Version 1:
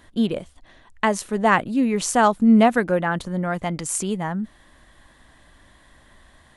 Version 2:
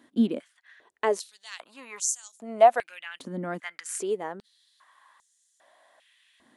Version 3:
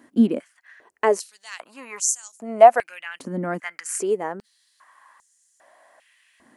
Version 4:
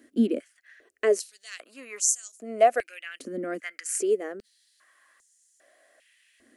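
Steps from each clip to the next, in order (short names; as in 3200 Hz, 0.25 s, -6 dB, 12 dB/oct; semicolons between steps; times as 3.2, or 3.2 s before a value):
stepped high-pass 2.5 Hz 260–6600 Hz; gain -9 dB
bell 3600 Hz -12 dB 0.42 oct; gain +6 dB
fixed phaser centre 380 Hz, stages 4; gain -1 dB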